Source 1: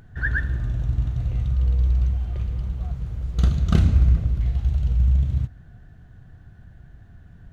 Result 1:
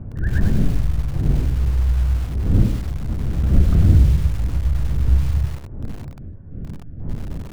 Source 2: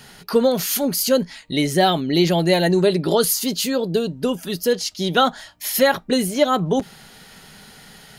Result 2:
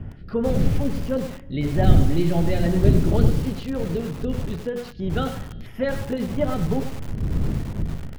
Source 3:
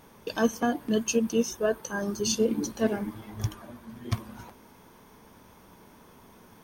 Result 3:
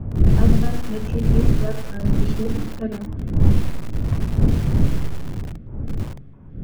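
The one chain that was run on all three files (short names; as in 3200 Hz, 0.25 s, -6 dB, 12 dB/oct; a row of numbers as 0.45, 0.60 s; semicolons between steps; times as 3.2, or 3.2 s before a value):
wind noise 190 Hz -24 dBFS; low shelf 190 Hz +11 dB; notches 60/120/180/240/300/360/420/480/540 Hz; flange 0.34 Hz, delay 8.9 ms, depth 4 ms, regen -78%; air absorption 390 m; resonator 140 Hz, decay 1.9 s, mix 60%; Schroeder reverb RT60 1.7 s, combs from 33 ms, DRR 19 dB; LFO notch square 3 Hz 950–4200 Hz; lo-fi delay 99 ms, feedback 35%, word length 6-bit, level -8 dB; normalise peaks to -2 dBFS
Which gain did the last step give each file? +5.5, +5.0, +8.5 dB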